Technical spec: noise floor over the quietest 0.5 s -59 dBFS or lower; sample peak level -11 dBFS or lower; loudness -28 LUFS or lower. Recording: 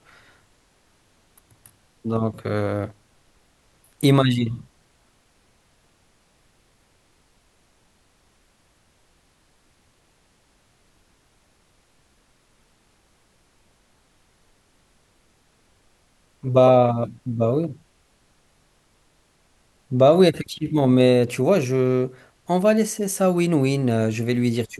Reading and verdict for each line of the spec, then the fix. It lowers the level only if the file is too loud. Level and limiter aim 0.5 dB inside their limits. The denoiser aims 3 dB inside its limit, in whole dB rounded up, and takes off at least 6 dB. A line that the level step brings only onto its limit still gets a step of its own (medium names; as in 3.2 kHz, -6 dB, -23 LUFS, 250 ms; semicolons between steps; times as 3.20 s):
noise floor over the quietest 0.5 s -62 dBFS: pass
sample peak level -4.5 dBFS: fail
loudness -20.5 LUFS: fail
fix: trim -8 dB